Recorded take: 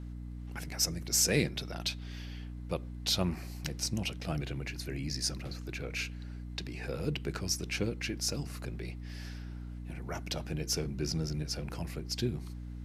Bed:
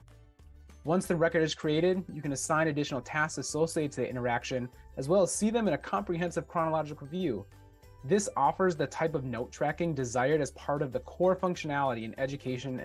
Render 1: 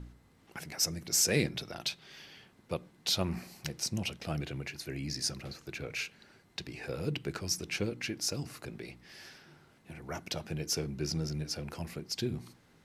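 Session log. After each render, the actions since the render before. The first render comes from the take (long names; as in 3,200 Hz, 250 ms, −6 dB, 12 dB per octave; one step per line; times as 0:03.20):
hum removal 60 Hz, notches 5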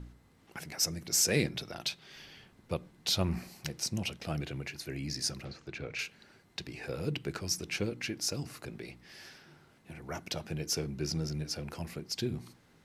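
0:02.15–0:03.49: low-shelf EQ 75 Hz +11.5 dB
0:05.45–0:05.99: high-frequency loss of the air 88 metres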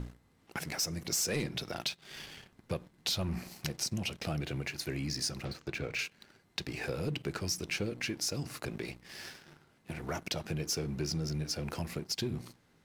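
leveller curve on the samples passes 2
downward compressor 2.5 to 1, threshold −35 dBFS, peak gain reduction 10.5 dB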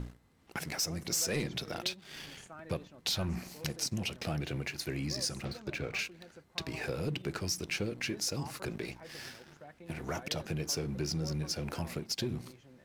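mix in bed −22 dB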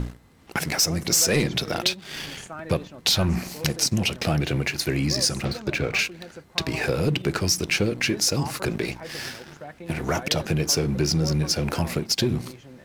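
level +12 dB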